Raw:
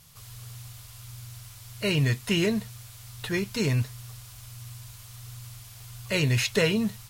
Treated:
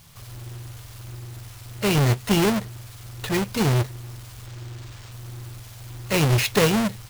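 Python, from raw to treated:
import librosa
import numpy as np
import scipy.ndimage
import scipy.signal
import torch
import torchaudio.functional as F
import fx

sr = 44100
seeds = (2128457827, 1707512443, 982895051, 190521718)

y = fx.halfwave_hold(x, sr)
y = fx.sample_hold(y, sr, seeds[0], rate_hz=12000.0, jitter_pct=0, at=(4.46, 5.12))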